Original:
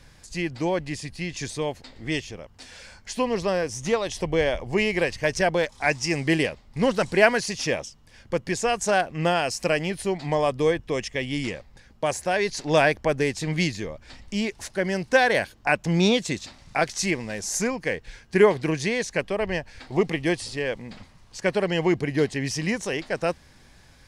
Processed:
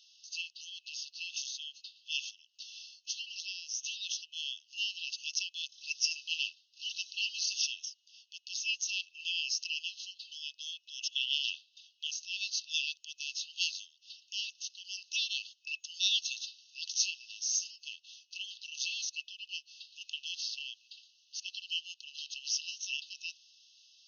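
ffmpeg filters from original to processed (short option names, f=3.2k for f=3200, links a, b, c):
-filter_complex "[0:a]asettb=1/sr,asplit=3[a][b][c];[a]atrim=end=11.084[d];[b]atrim=start=11.08:end=12.07,asetpts=PTS-STARTPTS,afade=t=in:d=0.004:c=qsin,afade=t=out:st=0.986:d=0.004:c=qsin,equalizer=f=3.2k:t=o:w=0.82:g=7.5[e];[c]atrim=start=12.066[f];[d][e]acrossfade=d=0.004:c1=hsin:c2=qsin[g];[g][f]acrossfade=d=0.004:c1=qsin:c2=hsin,afftfilt=real='re*between(b*sr/4096,2600,6600)':imag='im*between(b*sr/4096,2600,6600)':win_size=4096:overlap=0.75"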